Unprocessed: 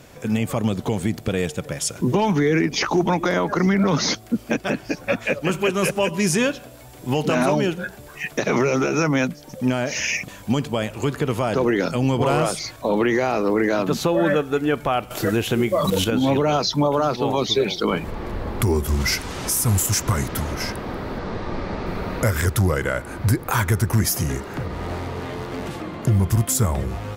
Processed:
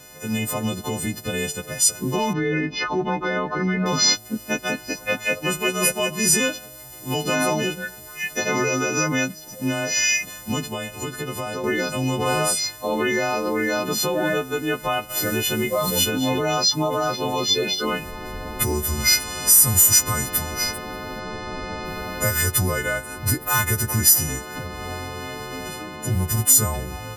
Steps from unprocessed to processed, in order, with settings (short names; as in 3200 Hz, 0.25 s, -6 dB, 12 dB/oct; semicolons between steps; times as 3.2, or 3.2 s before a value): frequency quantiser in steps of 3 st; 2.33–3.86 air absorption 290 m; 10.64–11.64 compressor, threshold -22 dBFS, peak gain reduction 6.5 dB; gain -3.5 dB